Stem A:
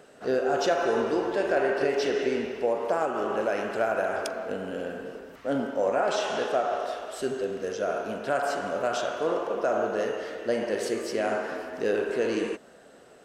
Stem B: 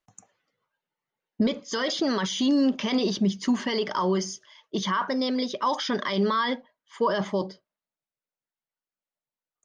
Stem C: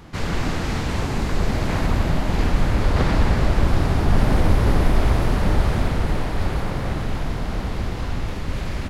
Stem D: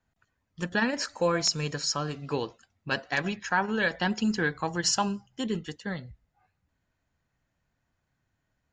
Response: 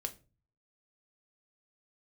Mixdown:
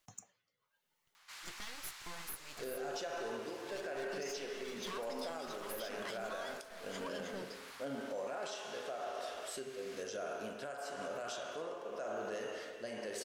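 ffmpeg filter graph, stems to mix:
-filter_complex "[0:a]adelay=2350,volume=-6.5dB,asplit=2[a][b];[b]volume=-7dB[c];[1:a]acompressor=threshold=-37dB:ratio=3,asoftclip=type=tanh:threshold=-36dB,volume=0dB,asplit=3[d][e][f];[d]atrim=end=1.29,asetpts=PTS-STARTPTS,afade=t=out:st=1.286:d=0.004:c=hsin[g];[e]atrim=start=1.29:end=4.13,asetpts=PTS-STARTPTS,volume=0[h];[f]atrim=start=4.13,asetpts=PTS-STARTPTS,afade=t=in:d=0.004:c=hsin[i];[g][h][i]concat=n=3:v=0:a=1,asplit=2[j][k];[k]volume=-12dB[l];[2:a]highpass=f=980:w=0.5412,highpass=f=980:w=1.3066,asoftclip=type=tanh:threshold=-35dB,adelay=1150,volume=-17dB[m];[3:a]highshelf=f=5.7k:g=11,acompressor=threshold=-29dB:ratio=2,aeval=exprs='abs(val(0))':c=same,adelay=850,volume=-17.5dB[n];[a][j]amix=inputs=2:normalize=0,tremolo=f=0.97:d=0.93,alimiter=level_in=5dB:limit=-24dB:level=0:latency=1:release=10,volume=-5dB,volume=0dB[o];[4:a]atrim=start_sample=2205[p];[c][l]amix=inputs=2:normalize=0[q];[q][p]afir=irnorm=-1:irlink=0[r];[m][n][o][r]amix=inputs=4:normalize=0,highshelf=f=2.5k:g=9.5,alimiter=level_in=8.5dB:limit=-24dB:level=0:latency=1:release=467,volume=-8.5dB"

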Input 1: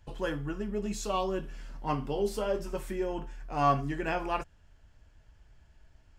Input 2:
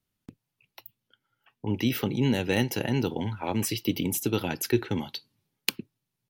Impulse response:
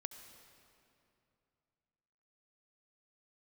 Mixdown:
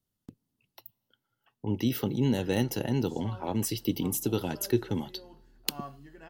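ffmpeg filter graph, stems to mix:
-filter_complex "[0:a]adelay=2150,volume=-17.5dB[a];[1:a]equalizer=f=2k:t=o:w=1.7:g=-6,volume=-2dB,asplit=2[b][c];[c]volume=-18dB[d];[2:a]atrim=start_sample=2205[e];[d][e]afir=irnorm=-1:irlink=0[f];[a][b][f]amix=inputs=3:normalize=0,bandreject=f=2.4k:w=7.3"

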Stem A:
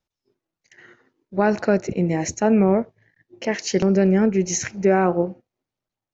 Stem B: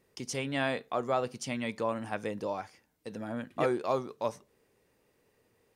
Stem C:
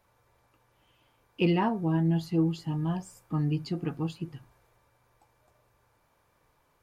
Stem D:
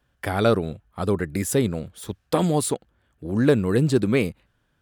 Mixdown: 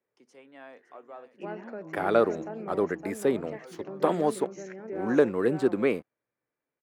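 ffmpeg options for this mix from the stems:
-filter_complex "[0:a]adelay=50,volume=-14.5dB,asplit=2[a][b];[b]volume=-6.5dB[c];[1:a]volume=-15dB,asplit=2[d][e];[e]volume=-13dB[f];[2:a]equalizer=f=125:t=o:w=1:g=10,equalizer=f=250:t=o:w=1:g=5,equalizer=f=1k:t=o:w=1:g=-11,equalizer=f=2k:t=o:w=1:g=6,volume=-17dB,asplit=3[g][h][i];[h]volume=-5dB[j];[3:a]aeval=exprs='sgn(val(0))*max(abs(val(0))-0.00473,0)':c=same,adelay=1700,volume=-1dB[k];[i]apad=whole_len=253729[l];[d][l]sidechaincompress=threshold=-43dB:ratio=8:attack=16:release=191[m];[a][m]amix=inputs=2:normalize=0,highpass=f=140:w=0.5412,highpass=f=140:w=1.3066,alimiter=level_in=2.5dB:limit=-24dB:level=0:latency=1:release=243,volume=-2.5dB,volume=0dB[n];[c][f][j]amix=inputs=3:normalize=0,aecho=0:1:563:1[o];[g][k][n][o]amix=inputs=4:normalize=0,acrossover=split=250 2200:gain=0.0891 1 0.2[p][q][r];[p][q][r]amix=inputs=3:normalize=0"

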